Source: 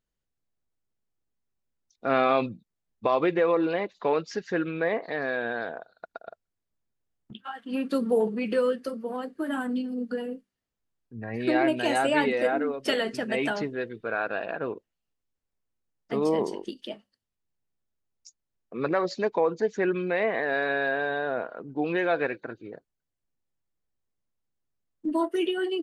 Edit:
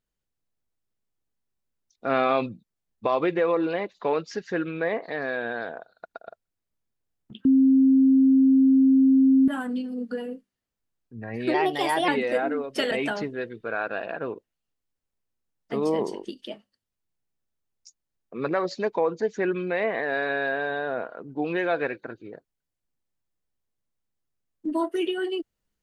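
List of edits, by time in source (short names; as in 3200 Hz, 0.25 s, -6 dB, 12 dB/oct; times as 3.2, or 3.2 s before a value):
7.45–9.48 bleep 266 Hz -14 dBFS
11.54–12.18 speed 118%
13.01–13.31 cut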